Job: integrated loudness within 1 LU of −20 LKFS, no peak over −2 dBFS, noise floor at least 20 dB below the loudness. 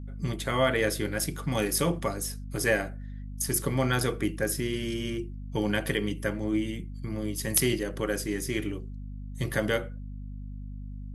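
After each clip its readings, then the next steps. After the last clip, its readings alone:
mains hum 50 Hz; hum harmonics up to 250 Hz; level of the hum −36 dBFS; integrated loudness −29.5 LKFS; sample peak −6.5 dBFS; target loudness −20.0 LKFS
→ hum removal 50 Hz, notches 5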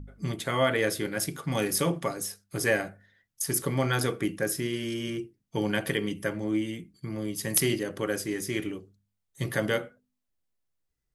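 mains hum none found; integrated loudness −29.5 LKFS; sample peak −6.5 dBFS; target loudness −20.0 LKFS
→ level +9.5 dB
brickwall limiter −2 dBFS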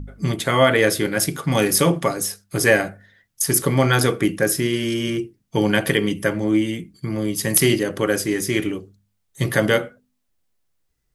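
integrated loudness −20.0 LKFS; sample peak −2.0 dBFS; background noise floor −71 dBFS

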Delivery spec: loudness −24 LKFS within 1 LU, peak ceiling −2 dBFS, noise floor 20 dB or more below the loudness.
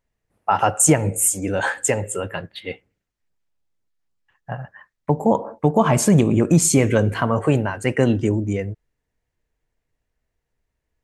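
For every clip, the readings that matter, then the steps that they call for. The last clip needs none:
integrated loudness −19.0 LKFS; sample peak −3.0 dBFS; target loudness −24.0 LKFS
→ level −5 dB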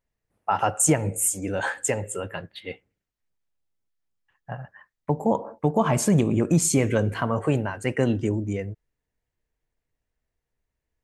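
integrated loudness −24.0 LKFS; sample peak −8.0 dBFS; background noise floor −84 dBFS

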